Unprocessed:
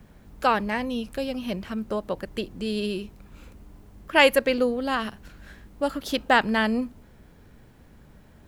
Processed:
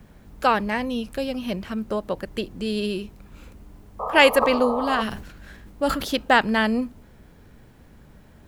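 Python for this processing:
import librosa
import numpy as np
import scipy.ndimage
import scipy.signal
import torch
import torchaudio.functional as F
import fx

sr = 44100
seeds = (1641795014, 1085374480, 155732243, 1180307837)

y = fx.spec_paint(x, sr, seeds[0], shape='noise', start_s=3.99, length_s=1.03, low_hz=420.0, high_hz=1300.0, level_db=-30.0)
y = fx.sustainer(y, sr, db_per_s=73.0, at=(4.41, 6.14), fade=0.02)
y = F.gain(torch.from_numpy(y), 2.0).numpy()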